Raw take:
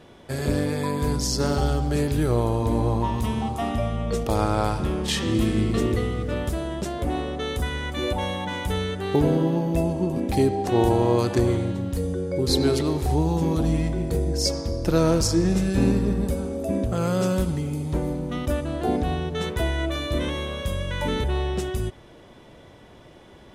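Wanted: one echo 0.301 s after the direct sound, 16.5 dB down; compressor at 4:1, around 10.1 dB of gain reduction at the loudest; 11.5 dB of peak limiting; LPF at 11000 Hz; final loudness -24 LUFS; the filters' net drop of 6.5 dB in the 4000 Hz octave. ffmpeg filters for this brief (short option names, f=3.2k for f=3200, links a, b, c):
-af "lowpass=11k,equalizer=f=4k:t=o:g=-8.5,acompressor=threshold=-28dB:ratio=4,alimiter=level_in=4dB:limit=-24dB:level=0:latency=1,volume=-4dB,aecho=1:1:301:0.15,volume=12.5dB"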